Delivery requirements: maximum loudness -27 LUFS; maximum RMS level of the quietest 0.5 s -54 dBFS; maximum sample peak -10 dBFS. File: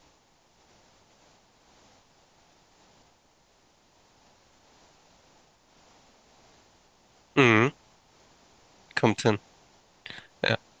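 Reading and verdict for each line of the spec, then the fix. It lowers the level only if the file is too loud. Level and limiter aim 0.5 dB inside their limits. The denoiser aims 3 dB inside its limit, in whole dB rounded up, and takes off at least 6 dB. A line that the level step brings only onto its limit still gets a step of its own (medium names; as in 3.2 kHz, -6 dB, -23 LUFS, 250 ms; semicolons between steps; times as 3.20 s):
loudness -25.0 LUFS: fail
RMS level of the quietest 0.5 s -64 dBFS: pass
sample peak -5.0 dBFS: fail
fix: trim -2.5 dB; peak limiter -10.5 dBFS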